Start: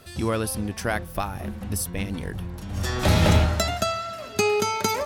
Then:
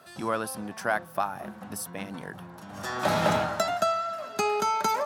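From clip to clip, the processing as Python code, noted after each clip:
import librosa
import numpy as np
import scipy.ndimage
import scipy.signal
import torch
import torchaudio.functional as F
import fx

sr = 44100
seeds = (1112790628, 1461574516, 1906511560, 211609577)

y = scipy.signal.sosfilt(scipy.signal.butter(4, 140.0, 'highpass', fs=sr, output='sos'), x)
y = fx.band_shelf(y, sr, hz=1000.0, db=8.5, octaves=1.7)
y = y * 10.0 ** (-7.0 / 20.0)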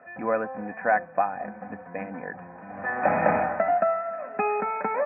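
y = scipy.signal.sosfilt(scipy.signal.cheby1(6, 9, 2500.0, 'lowpass', fs=sr, output='sos'), x)
y = y + 0.51 * np.pad(y, (int(4.0 * sr / 1000.0), 0))[:len(y)]
y = y * 10.0 ** (6.5 / 20.0)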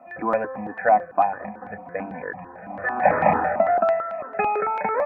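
y = fx.phaser_held(x, sr, hz=9.0, low_hz=440.0, high_hz=1500.0)
y = y * 10.0 ** (6.5 / 20.0)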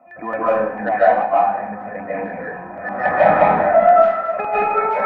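y = 10.0 ** (-6.5 / 20.0) * np.tanh(x / 10.0 ** (-6.5 / 20.0))
y = fx.rev_freeverb(y, sr, rt60_s=0.71, hf_ratio=0.95, predelay_ms=110, drr_db=-8.5)
y = y * 10.0 ** (-3.0 / 20.0)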